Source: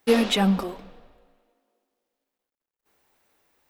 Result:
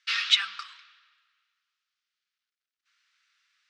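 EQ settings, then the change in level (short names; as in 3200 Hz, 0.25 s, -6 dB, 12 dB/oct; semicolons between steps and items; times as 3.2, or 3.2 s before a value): elliptic high-pass 1300 Hz, stop band 50 dB; LPF 5500 Hz 24 dB/oct; high shelf 2400 Hz +7 dB; 0.0 dB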